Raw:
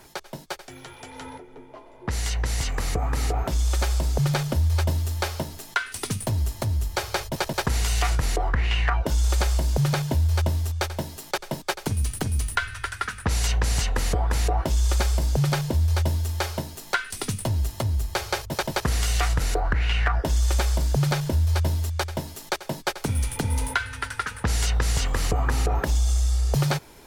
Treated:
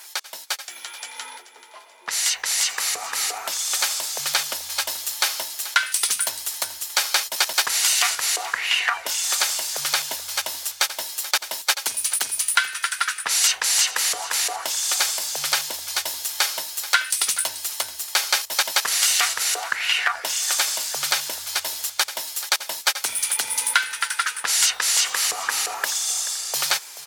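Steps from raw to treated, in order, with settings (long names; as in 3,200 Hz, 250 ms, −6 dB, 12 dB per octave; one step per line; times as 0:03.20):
high-pass filter 940 Hz 12 dB per octave
high-shelf EQ 2,100 Hz +11.5 dB
repeating echo 433 ms, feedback 43%, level −15.5 dB
level +2 dB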